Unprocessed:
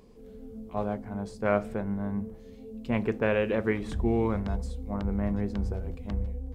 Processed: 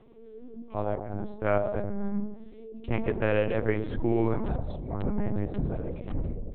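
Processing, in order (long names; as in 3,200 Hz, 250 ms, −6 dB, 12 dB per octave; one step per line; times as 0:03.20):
on a send at −3.5 dB: Chebyshev band-pass filter 150–840 Hz, order 2 + convolution reverb RT60 0.75 s, pre-delay 81 ms
on the sum: linear-prediction vocoder at 8 kHz pitch kept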